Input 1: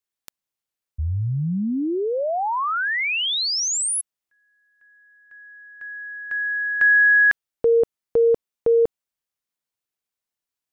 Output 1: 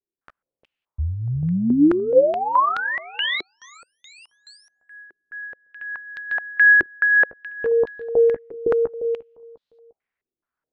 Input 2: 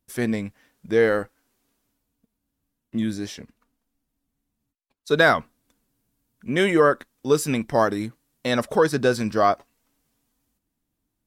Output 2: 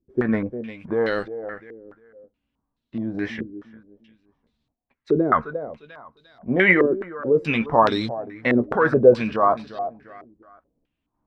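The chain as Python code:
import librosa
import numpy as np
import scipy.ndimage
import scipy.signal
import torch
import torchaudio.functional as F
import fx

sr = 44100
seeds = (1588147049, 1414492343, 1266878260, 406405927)

p1 = fx.over_compress(x, sr, threshold_db=-24.0, ratio=-1.0)
p2 = x + (p1 * librosa.db_to_amplitude(0.0))
p3 = fx.echo_feedback(p2, sr, ms=351, feedback_pct=32, wet_db=-15)
p4 = fx.chorus_voices(p3, sr, voices=4, hz=0.18, base_ms=15, depth_ms=2.6, mix_pct=25)
p5 = fx.tremolo_random(p4, sr, seeds[0], hz=3.5, depth_pct=55)
p6 = fx.filter_held_lowpass(p5, sr, hz=4.7, low_hz=370.0, high_hz=3900.0)
y = p6 * librosa.db_to_amplitude(-1.0)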